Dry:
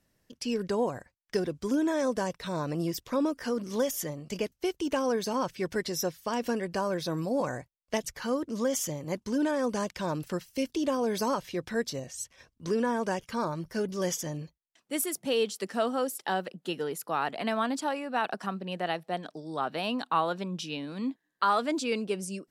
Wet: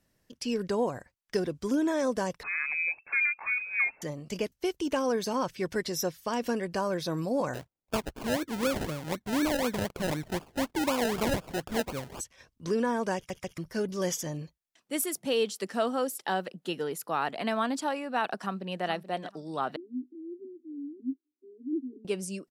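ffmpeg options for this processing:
-filter_complex "[0:a]asettb=1/sr,asplit=3[a][b][c];[a]atrim=end=2.434[d];[b]atrim=start=2.43:end=4.02,asetpts=PTS-STARTPTS,afade=t=in:d=0.004:c=qsin,afade=t=out:st=1.586:d=0.004:c=qsin,lowpass=f=2.3k:t=q:w=0.5098,lowpass=f=2.3k:t=q:w=0.6013,lowpass=f=2.3k:t=q:w=0.9,lowpass=f=2.3k:t=q:w=2.563,afreqshift=-2700[e];[c]atrim=start=4.016[f];[d][e]acrossfade=d=0.004:c1=hsin:c2=qsin[g];[g][f]acrossfade=d=0.004:c1=qsin:c2=hsin,asplit=3[h][i][j];[h]afade=t=out:st=7.53:d=0.02[k];[i]acrusher=samples=31:mix=1:aa=0.000001:lfo=1:lforange=18.6:lforate=4,afade=t=in:st=7.53:d=0.02,afade=t=out:st=12.19:d=0.02[l];[j]afade=t=in:st=12.19:d=0.02[m];[k][l][m]amix=inputs=3:normalize=0,asplit=2[n][o];[o]afade=t=in:st=18.39:d=0.01,afade=t=out:st=18.85:d=0.01,aecho=0:1:430|860|1290:0.251189|0.0502377|0.0100475[p];[n][p]amix=inputs=2:normalize=0,asettb=1/sr,asplit=3[q][r][s];[q]atrim=end=19.764[t];[r]atrim=start=19.76:end=22.05,asetpts=PTS-STARTPTS,afade=t=in:d=0.004:c=qsin,afade=t=out:st=2.286:d=0.004:c=qsin,asuperpass=centerf=310:order=12:qfactor=2.2[u];[s]atrim=start=22.046[v];[t][u]acrossfade=d=0.004:c1=hsin:c2=qsin[w];[w][v]acrossfade=d=0.004:c1=qsin:c2=hsin,asplit=4[x][y][z][aa];[x]atrim=end=13.302[ab];[y]atrim=start=13.158:end=13.302[ac];[z]atrim=start=13.158:end=13.302[ad];[aa]atrim=start=13.578[ae];[ab][ac]acrossfade=d=0.004:c1=hsin:c2=hsin[af];[af][ad]acrossfade=d=0.004:c1=hsin:c2=hsin[ag];[ag][ae]acrossfade=d=0.004:c1=hsin:c2=hsin"

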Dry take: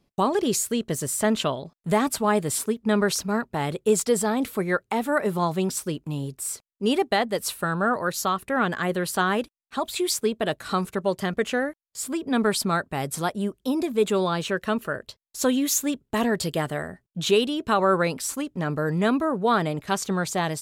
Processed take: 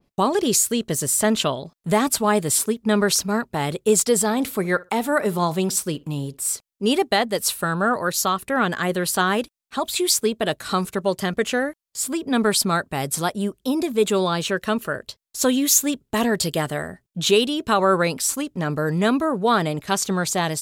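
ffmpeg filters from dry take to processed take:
-filter_complex "[0:a]asettb=1/sr,asplit=3[a][b][c];[a]atrim=end=4.234[d];[b]atrim=start=4.23:end=6.5,asetpts=PTS-STARTPTS,afade=t=in:d=0.004:c=qsin,afade=t=out:st=2.266:d=0.004:c=qsin,asplit=2[e][f];[f]adelay=62,lowpass=f=2k:p=1,volume=-20.5dB,asplit=2[g][h];[h]adelay=62,lowpass=f=2k:p=1,volume=0.19[i];[e][g][i]amix=inputs=3:normalize=0,atrim=end_sample=100107[j];[c]atrim=start=6.496[k];[d][j]acrossfade=d=0.004:c1=hsin:c2=qsin[l];[l][k]acrossfade=d=0.004:c1=qsin:c2=hsin,adynamicequalizer=threshold=0.01:dfrequency=3100:dqfactor=0.7:tfrequency=3100:tqfactor=0.7:attack=5:release=100:ratio=0.375:range=2.5:mode=boostabove:tftype=highshelf,volume=2.5dB"

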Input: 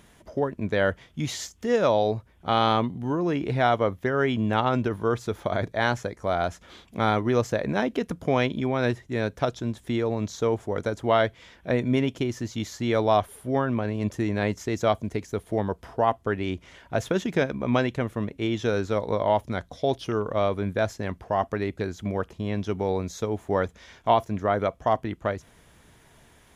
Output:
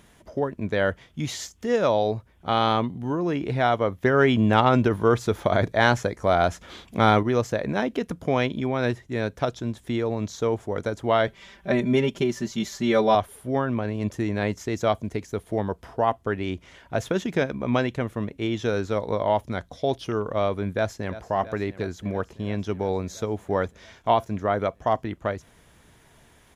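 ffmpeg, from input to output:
-filter_complex "[0:a]asettb=1/sr,asplit=3[a][b][c];[a]atrim=end=4.034[d];[b]atrim=start=4.03:end=7.23,asetpts=PTS-STARTPTS,afade=t=in:d=0.004:c=qsin,afade=t=out:st=3.196:d=0.004:c=qsin,acontrast=33[e];[c]atrim=start=7.226[f];[d][e]acrossfade=d=0.004:c1=hsin:c2=qsin[g];[g][f]acrossfade=d=0.004:c1=qsin:c2=hsin,asettb=1/sr,asplit=3[h][i][j];[h]atrim=end=11.274[k];[i]atrim=start=11.27:end=13.15,asetpts=PTS-STARTPTS,afade=t=in:d=0.004:c=qsin,afade=t=out:st=1.876:d=0.004:c=qsin,aecho=1:1:5.1:0.99,atrim=end_sample=82908[l];[j]atrim=start=13.146[m];[k][l]acrossfade=d=0.004:c1=hsin:c2=qsin[n];[n][m]acrossfade=d=0.004:c1=qsin:c2=hsin,asplit=2[o][p];[p]afade=t=in:st=20.7:d=0.01,afade=t=out:st=21.16:d=0.01,aecho=0:1:340|680|1020|1360|1700|2040|2380|2720|3060|3400|3740|4080:0.177828|0.142262|0.11381|0.0910479|0.0728383|0.0582707|0.0466165|0.0372932|0.0298346|0.0238677|0.0190941|0.0152753[q];[o][q]amix=inputs=2:normalize=0"

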